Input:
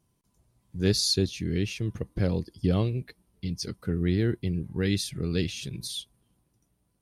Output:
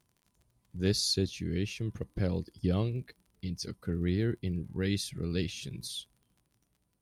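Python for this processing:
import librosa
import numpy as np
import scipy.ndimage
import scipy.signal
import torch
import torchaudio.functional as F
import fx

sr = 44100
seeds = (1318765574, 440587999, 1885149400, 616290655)

y = fx.dmg_crackle(x, sr, seeds[0], per_s=40.0, level_db=-47.0)
y = y * librosa.db_to_amplitude(-4.5)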